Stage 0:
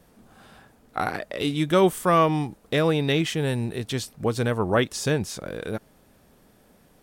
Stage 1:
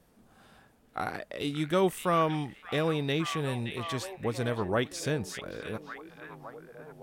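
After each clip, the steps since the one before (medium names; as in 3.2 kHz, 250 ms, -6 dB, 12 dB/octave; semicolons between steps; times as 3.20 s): repeats whose band climbs or falls 571 ms, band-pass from 2.5 kHz, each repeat -0.7 oct, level -5 dB; trim -7 dB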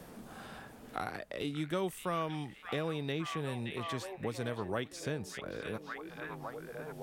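three bands compressed up and down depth 70%; trim -6.5 dB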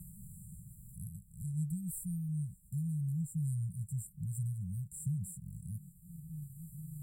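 brick-wall FIR band-stop 190–7200 Hz; trim +7 dB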